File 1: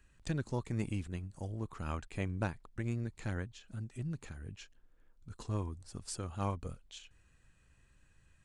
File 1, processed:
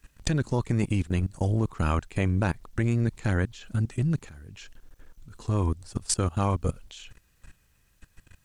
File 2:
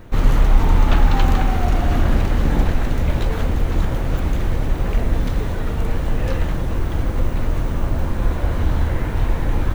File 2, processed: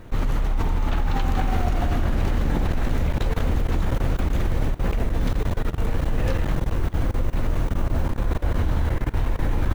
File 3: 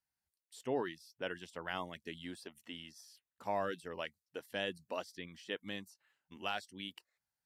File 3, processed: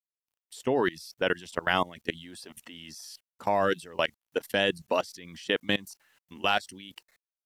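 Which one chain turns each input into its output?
level held to a coarse grid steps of 21 dB; SBC 192 kbps 48 kHz; peak normalisation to -9 dBFS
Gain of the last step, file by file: +18.0 dB, +1.0 dB, +17.5 dB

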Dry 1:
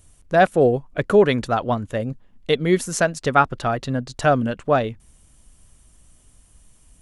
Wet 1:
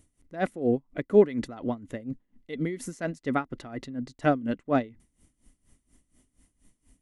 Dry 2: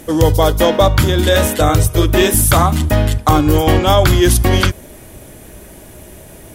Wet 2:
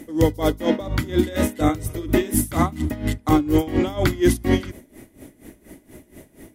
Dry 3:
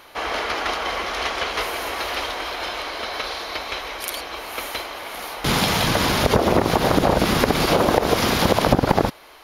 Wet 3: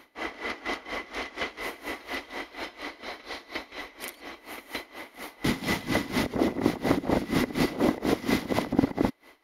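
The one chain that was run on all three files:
small resonant body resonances 270/2000 Hz, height 13 dB, ringing for 25 ms; logarithmic tremolo 4.2 Hz, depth 18 dB; trim -8 dB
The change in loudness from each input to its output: -8.0 LU, -9.0 LU, -8.5 LU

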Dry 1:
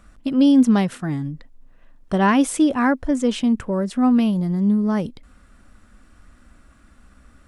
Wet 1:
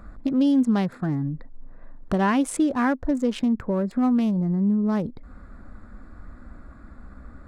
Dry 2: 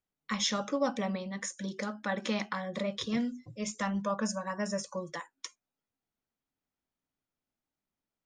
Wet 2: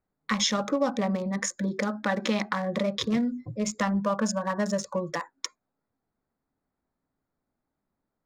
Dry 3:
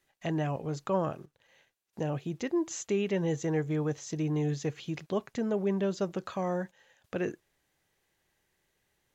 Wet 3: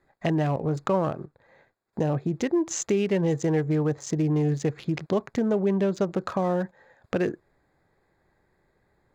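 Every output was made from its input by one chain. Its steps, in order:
local Wiener filter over 15 samples; compression 2:1, threshold -37 dBFS; peak normalisation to -12 dBFS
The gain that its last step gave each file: +8.0 dB, +11.0 dB, +12.0 dB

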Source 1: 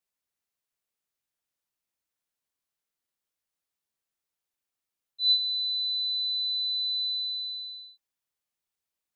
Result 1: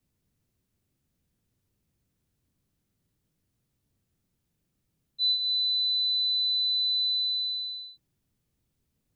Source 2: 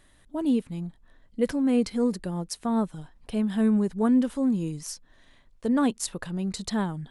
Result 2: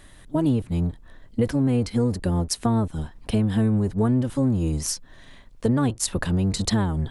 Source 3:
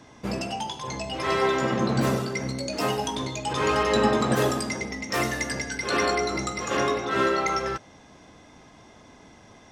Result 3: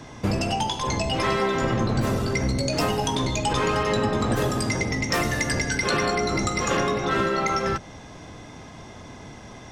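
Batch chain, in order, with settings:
octave divider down 1 oct, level 0 dB; compression 6:1, threshold -28 dBFS; normalise loudness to -24 LUFS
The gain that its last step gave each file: +4.5 dB, +9.5 dB, +7.5 dB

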